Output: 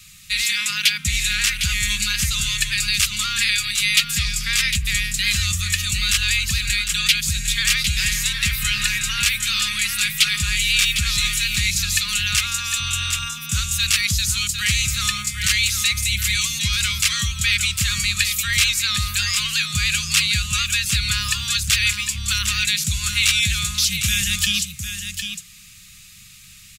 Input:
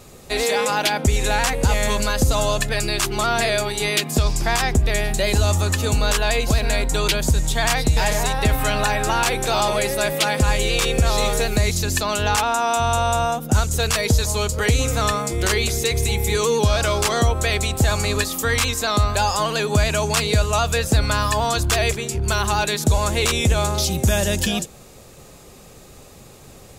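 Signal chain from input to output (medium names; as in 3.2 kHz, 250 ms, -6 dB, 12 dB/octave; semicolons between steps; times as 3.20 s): Chebyshev band-stop 200–1200 Hz, order 4; resonant high shelf 1.7 kHz +10.5 dB, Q 1.5; on a send: delay 755 ms -8 dB; on the sum: trim -6.5 dB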